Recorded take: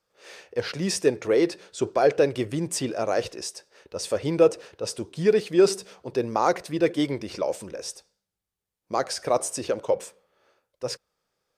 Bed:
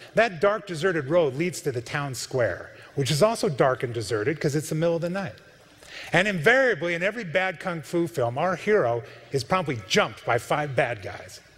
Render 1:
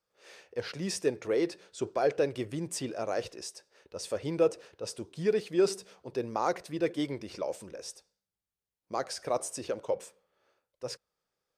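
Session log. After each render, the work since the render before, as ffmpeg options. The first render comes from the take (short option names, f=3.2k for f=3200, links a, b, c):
-af "volume=-7.5dB"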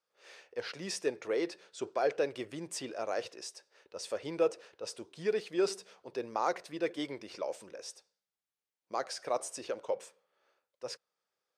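-af "highpass=f=520:p=1,highshelf=f=9.7k:g=-10.5"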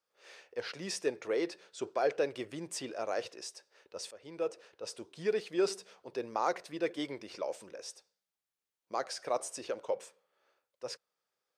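-filter_complex "[0:a]asplit=2[a][b];[a]atrim=end=4.11,asetpts=PTS-STARTPTS,afade=t=out:st=4.106:d=0.004:c=hsin:silence=0.11885[c];[b]atrim=start=4.11,asetpts=PTS-STARTPTS,afade=t=in:d=1.11:c=qsin:silence=0.11885[d];[c][d]concat=n=2:v=0:a=1"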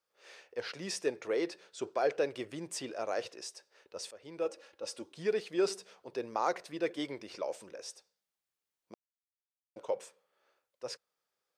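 -filter_complex "[0:a]asettb=1/sr,asplit=3[a][b][c];[a]atrim=end=4.454[d];[b]atrim=start=4.45:end=5.13,asetpts=PTS-STARTPTS,afade=t=in:d=0.004:c=qsin,afade=t=out:st=0.676:d=0.004:c=qsin,aecho=1:1:3.6:0.59,atrim=end_sample=29988[e];[c]atrim=start=5.126[f];[d][e]acrossfade=d=0.004:c1=hsin:c2=qsin[g];[g][f]acrossfade=d=0.004:c1=qsin:c2=hsin,asplit=3[h][i][j];[h]atrim=end=8.94,asetpts=PTS-STARTPTS,afade=t=out:st=8.936:d=0.004:c=hsin[k];[i]atrim=start=8.94:end=9.76,asetpts=PTS-STARTPTS,volume=0[l];[j]atrim=start=9.76,asetpts=PTS-STARTPTS,afade=t=in:d=0.004:c=hsin[m];[k][l][m]concat=n=3:v=0:a=1"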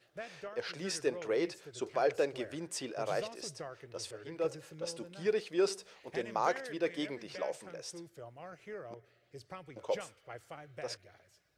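-filter_complex "[1:a]volume=-24dB[a];[0:a][a]amix=inputs=2:normalize=0"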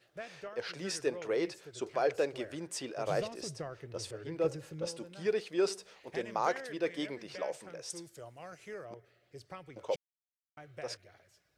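-filter_complex "[0:a]asettb=1/sr,asplit=3[a][b][c];[a]atrim=end=3.074[d];[b]atrim=start=3.07:end=4.88,asetpts=PTS-STARTPTS,afade=t=in:d=0.004:c=qsin,afade=t=out:st=1.806:d=0.004:c=qsin,lowshelf=f=320:g=9[e];[c]atrim=start=4.876[f];[d][e]acrossfade=d=0.004:c1=hsin:c2=qsin[g];[g][f]acrossfade=d=0.004:c1=qsin:c2=hsin,asettb=1/sr,asplit=3[h][i][j];[h]atrim=end=7.904[k];[i]atrim=start=7.9:end=8.85,asetpts=PTS-STARTPTS,afade=t=in:d=0.004:c=qsin,afade=t=out:st=0.946:d=0.004:c=qsin,equalizer=f=8.5k:t=o:w=2:g=11[l];[j]atrim=start=8.846[m];[k][l]acrossfade=d=0.004:c1=hsin:c2=qsin[n];[n][m]acrossfade=d=0.004:c1=qsin:c2=hsin,asplit=3[o][p][q];[o]atrim=end=9.96,asetpts=PTS-STARTPTS,afade=t=out:st=9.956:d=0.004:c=hsin[r];[p]atrim=start=9.96:end=10.57,asetpts=PTS-STARTPTS,volume=0[s];[q]atrim=start=10.57,asetpts=PTS-STARTPTS,afade=t=in:d=0.004:c=hsin[t];[r][s][t]concat=n=3:v=0:a=1"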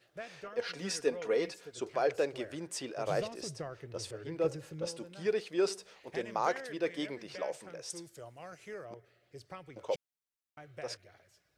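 -filter_complex "[0:a]asettb=1/sr,asplit=3[a][b][c];[a]atrim=end=0.444[d];[b]atrim=start=0.44:end=1.78,asetpts=PTS-STARTPTS,afade=t=in:d=0.004:c=qsin,afade=t=out:st=1.336:d=0.004:c=qsin,aecho=1:1:4.2:0.58,atrim=end_sample=59094[e];[c]atrim=start=1.776[f];[d][e]acrossfade=d=0.004:c1=hsin:c2=qsin[g];[g][f]acrossfade=d=0.004:c1=qsin:c2=hsin"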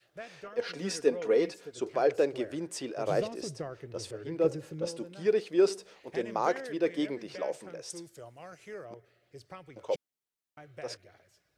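-af "adynamicequalizer=threshold=0.00631:dfrequency=310:dqfactor=0.73:tfrequency=310:tqfactor=0.73:attack=5:release=100:ratio=0.375:range=3.5:mode=boostabove:tftype=bell"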